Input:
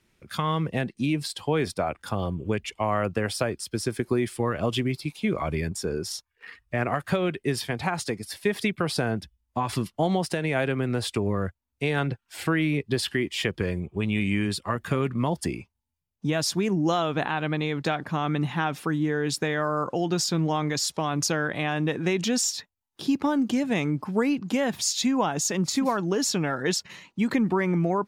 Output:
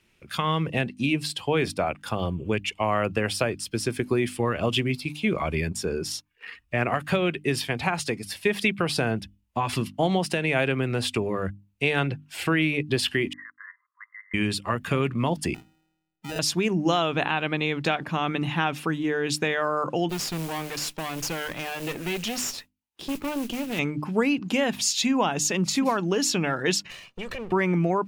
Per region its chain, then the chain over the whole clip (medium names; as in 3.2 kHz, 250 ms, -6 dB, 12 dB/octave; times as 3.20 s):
13.33–14.34 s: brick-wall FIR band-pass 990–2100 Hz + level held to a coarse grid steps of 15 dB
15.54–16.39 s: feedback comb 160 Hz, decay 1.2 s, mix 70% + sample-rate reducer 1.1 kHz
20.09–23.79 s: modulation noise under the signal 16 dB + valve stage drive 26 dB, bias 0.8
26.90–27.52 s: comb filter that takes the minimum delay 1.7 ms + compression 5:1, threshold -32 dBFS
whole clip: peaking EQ 2.7 kHz +7.5 dB 0.52 oct; hum notches 50/100/150/200/250/300 Hz; trim +1 dB